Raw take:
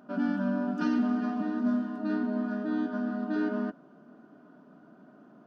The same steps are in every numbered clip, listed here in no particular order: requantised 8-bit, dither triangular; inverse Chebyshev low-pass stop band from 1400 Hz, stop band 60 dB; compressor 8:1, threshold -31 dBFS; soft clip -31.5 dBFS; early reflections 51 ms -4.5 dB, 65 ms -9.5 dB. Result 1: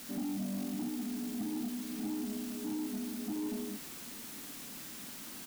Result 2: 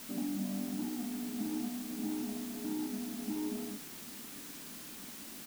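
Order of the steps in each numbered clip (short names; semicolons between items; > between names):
inverse Chebyshev low-pass > compressor > requantised > early reflections > soft clip; compressor > inverse Chebyshev low-pass > soft clip > early reflections > requantised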